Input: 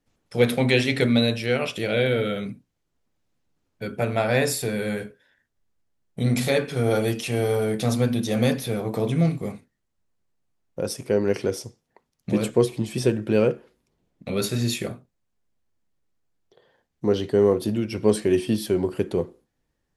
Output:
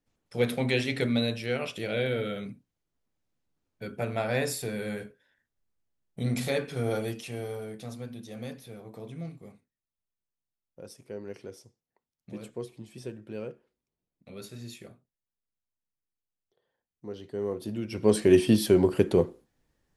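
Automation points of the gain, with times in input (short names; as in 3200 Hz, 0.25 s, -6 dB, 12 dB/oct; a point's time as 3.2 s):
6.84 s -7 dB
7.97 s -18 dB
17.15 s -18 dB
17.75 s -9 dB
18.34 s +2 dB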